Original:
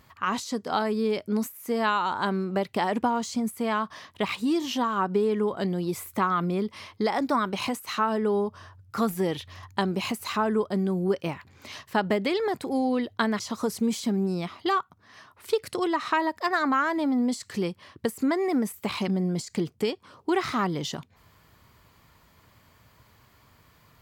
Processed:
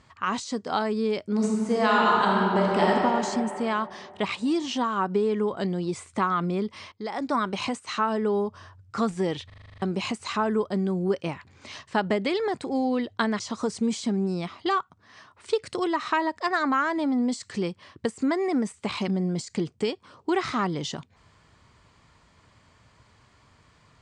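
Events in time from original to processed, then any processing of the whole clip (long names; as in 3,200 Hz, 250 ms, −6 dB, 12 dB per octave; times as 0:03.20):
0:01.32–0:02.89: thrown reverb, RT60 2.9 s, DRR −3.5 dB
0:06.92–0:07.40: fade in, from −15.5 dB
0:09.46: stutter in place 0.04 s, 9 plays
whole clip: Butterworth low-pass 9,100 Hz 72 dB per octave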